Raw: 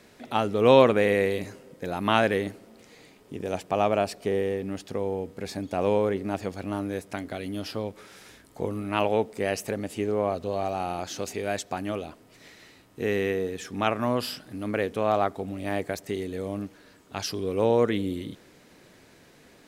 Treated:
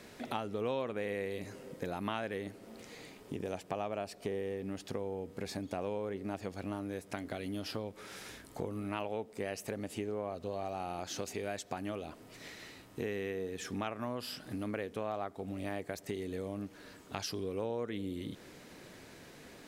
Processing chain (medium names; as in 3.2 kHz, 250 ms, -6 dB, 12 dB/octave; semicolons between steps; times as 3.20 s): compression 4:1, threshold -38 dBFS, peak gain reduction 21.5 dB; trim +1.5 dB